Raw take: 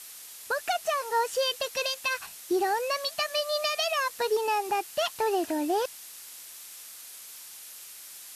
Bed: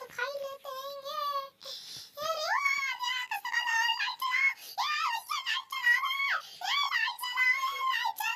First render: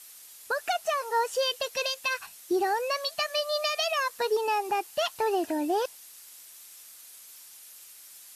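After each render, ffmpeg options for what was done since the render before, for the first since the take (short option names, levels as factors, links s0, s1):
-af "afftdn=nr=6:nf=-46"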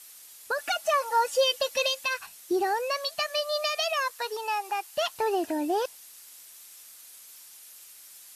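-filter_complex "[0:a]asettb=1/sr,asplit=3[s0][s1][s2];[s0]atrim=end=0.584[s3];[s1]atrim=start=0.58:end=2.04,asetpts=PTS-STARTPTS,afade=t=in:d=0.004:c=qsin,afade=t=out:st=1.456:d=0.004:c=qsin,aecho=1:1:3.5:0.89,atrim=end_sample=64386[s4];[s2]atrim=start=2.036[s5];[s3][s4]acrossfade=d=0.004:c1=hsin:c2=qsin[s6];[s6][s5]acrossfade=d=0.004:c1=qsin:c2=hsin,asettb=1/sr,asplit=3[s7][s8][s9];[s7]atrim=end=4.124[s10];[s8]atrim=start=4.12:end=4.94,asetpts=PTS-STARTPTS,afade=t=in:d=0.004:c=qsin,afade=t=out:st=0.816:d=0.004:c=qsin,highpass=730[s11];[s9]atrim=start=4.936[s12];[s10][s11]acrossfade=d=0.004:c1=hsin:c2=qsin[s13];[s13][s12]acrossfade=d=0.004:c1=qsin:c2=hsin"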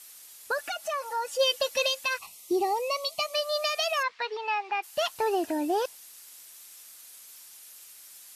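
-filter_complex "[0:a]asplit=3[s0][s1][s2];[s0]afade=t=out:st=0.6:d=0.02[s3];[s1]acompressor=threshold=0.0112:ratio=1.5:attack=3.2:release=140:knee=1:detection=peak,afade=t=in:st=0.6:d=0.02,afade=t=out:st=1.39:d=0.02[s4];[s2]afade=t=in:st=1.39:d=0.02[s5];[s3][s4][s5]amix=inputs=3:normalize=0,asettb=1/sr,asplit=3[s6][s7][s8];[s6]atrim=end=2.184[s9];[s7]atrim=start=2.18:end=3.34,asetpts=PTS-STARTPTS,afade=t=in:d=0.004:c=qsin,afade=t=out:st=1.156:d=0.004:c=qsin,asuperstop=centerf=1600:order=12:qfactor=2.5[s10];[s8]atrim=start=3.336[s11];[s9][s10]acrossfade=d=0.004:c1=hsin:c2=qsin[s12];[s12][s11]acrossfade=d=0.004:c1=qsin:c2=hsin,asplit=3[s13][s14][s15];[s13]afade=t=out:st=4.02:d=0.02[s16];[s14]highpass=110,equalizer=f=200:t=q:w=4:g=7,equalizer=f=580:t=q:w=4:g=-5,equalizer=f=2200:t=q:w=4:g=8,lowpass=f=4300:w=0.5412,lowpass=f=4300:w=1.3066,afade=t=in:st=4.02:d=0.02,afade=t=out:st=4.82:d=0.02[s17];[s15]afade=t=in:st=4.82:d=0.02[s18];[s16][s17][s18]amix=inputs=3:normalize=0"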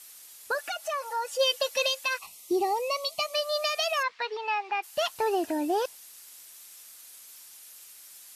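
-filter_complex "[0:a]asettb=1/sr,asplit=3[s0][s1][s2];[s0]atrim=end=0.554[s3];[s1]atrim=start=0.55:end=2.24,asetpts=PTS-STARTPTS,afade=t=in:d=0.004:c=qsin,afade=t=out:st=1.686:d=0.004:c=qsin,highpass=330[s4];[s2]atrim=start=2.236[s5];[s3][s4]acrossfade=d=0.004:c1=hsin:c2=qsin[s6];[s6][s5]acrossfade=d=0.004:c1=qsin:c2=hsin"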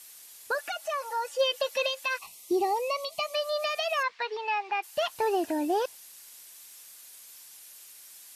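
-filter_complex "[0:a]acrossover=split=3500[s0][s1];[s1]acompressor=threshold=0.00794:ratio=4:attack=1:release=60[s2];[s0][s2]amix=inputs=2:normalize=0,bandreject=f=1300:w=19"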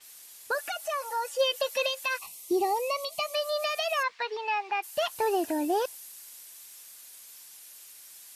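-af "adynamicequalizer=threshold=0.00398:dfrequency=7100:dqfactor=0.7:tfrequency=7100:tqfactor=0.7:attack=5:release=100:ratio=0.375:range=3:mode=boostabove:tftype=highshelf"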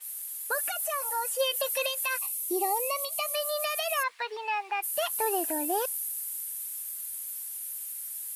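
-af "highpass=f=480:p=1,highshelf=f=7800:t=q:w=1.5:g=11"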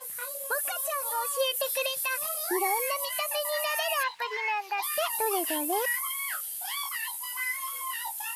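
-filter_complex "[1:a]volume=0.473[s0];[0:a][s0]amix=inputs=2:normalize=0"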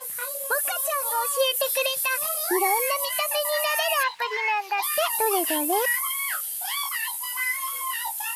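-af "volume=1.78"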